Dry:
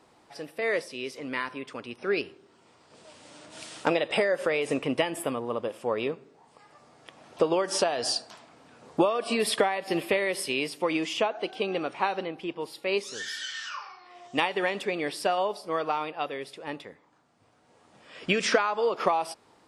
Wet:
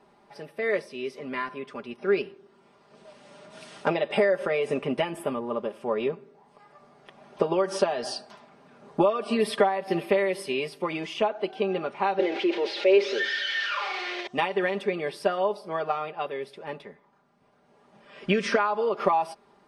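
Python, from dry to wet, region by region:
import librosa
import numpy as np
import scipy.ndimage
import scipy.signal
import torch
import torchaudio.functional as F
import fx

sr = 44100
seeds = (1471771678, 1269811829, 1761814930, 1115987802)

y = fx.chain(x, sr, fx.crossing_spikes(level_db=-23.5),
    fx.cabinet(low_hz=280.0, low_slope=24, high_hz=4000.0, hz=(350.0, 540.0, 1100.0, 2200.0), db=(7, 8, -7, 4)),
    fx.env_flatten(amount_pct=50), at=(12.19, 14.27))
y = fx.high_shelf(y, sr, hz=3000.0, db=-11.0)
y = fx.notch(y, sr, hz=7300.0, q=8.7)
y = y + 0.74 * np.pad(y, (int(5.0 * sr / 1000.0), 0))[:len(y)]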